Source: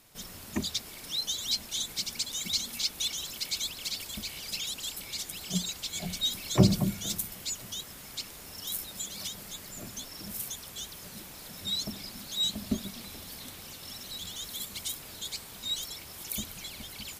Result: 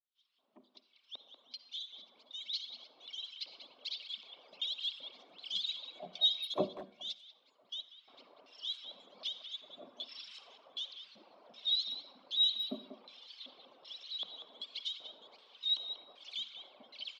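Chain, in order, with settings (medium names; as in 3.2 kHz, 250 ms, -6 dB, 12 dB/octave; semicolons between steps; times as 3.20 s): fade-in on the opening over 5.11 s; reverb removal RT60 1.6 s; 10.08–10.48 s: tilt shelf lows -7.5 dB, about 660 Hz; LFO band-pass square 1.3 Hz 610–3600 Hz; cabinet simulation 210–4800 Hz, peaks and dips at 260 Hz +7 dB, 1.1 kHz +7 dB, 1.8 kHz -5 dB, 3.2 kHz +6 dB; speakerphone echo 190 ms, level -7 dB; reverberation RT60 0.60 s, pre-delay 48 ms, DRR 12.5 dB; 6.45–8.08 s: upward expansion 1.5:1, over -47 dBFS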